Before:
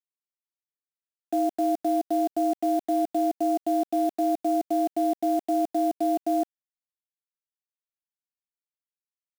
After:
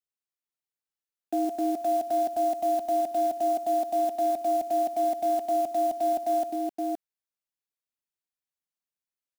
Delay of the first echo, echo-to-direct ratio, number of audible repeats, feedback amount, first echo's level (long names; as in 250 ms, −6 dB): 63 ms, −3.0 dB, 4, repeats not evenly spaced, −19.5 dB